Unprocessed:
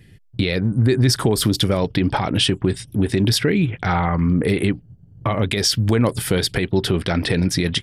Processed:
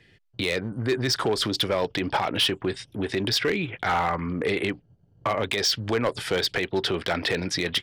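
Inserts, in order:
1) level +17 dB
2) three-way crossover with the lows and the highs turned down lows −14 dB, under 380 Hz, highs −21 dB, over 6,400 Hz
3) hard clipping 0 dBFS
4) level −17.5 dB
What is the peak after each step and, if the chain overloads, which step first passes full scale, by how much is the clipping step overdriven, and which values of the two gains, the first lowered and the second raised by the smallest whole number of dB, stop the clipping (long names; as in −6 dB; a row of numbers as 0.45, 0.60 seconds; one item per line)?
+10.0, +8.5, 0.0, −17.5 dBFS
step 1, 8.5 dB
step 1 +8 dB, step 4 −8.5 dB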